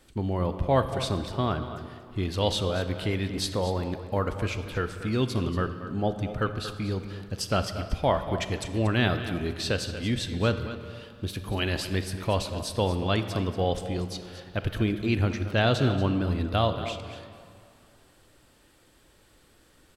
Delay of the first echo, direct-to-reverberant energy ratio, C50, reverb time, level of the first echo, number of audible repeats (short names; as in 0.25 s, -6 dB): 0.234 s, 7.5 dB, 8.0 dB, 2.5 s, -12.5 dB, 1